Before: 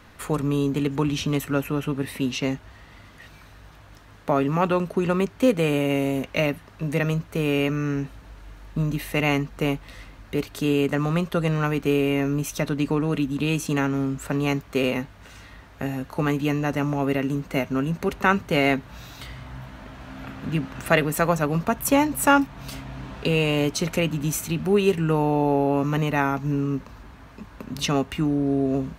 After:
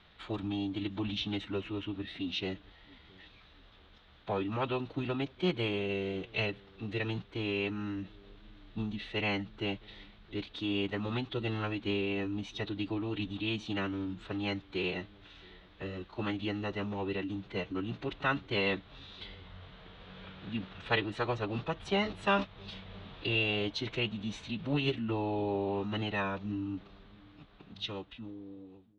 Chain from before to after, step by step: ending faded out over 2.30 s; formant-preserving pitch shift -6 st; ladder low-pass 3900 Hz, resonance 70%; on a send: dark delay 0.671 s, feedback 38%, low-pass 450 Hz, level -23 dB

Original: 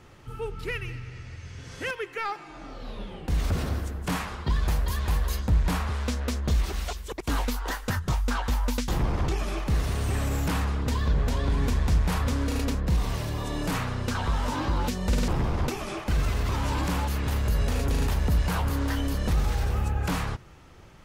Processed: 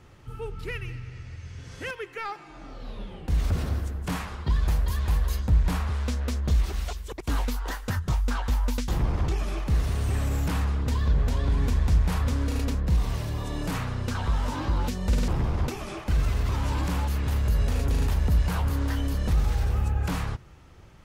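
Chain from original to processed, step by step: bell 64 Hz +5 dB 2.5 oct; gain -3 dB

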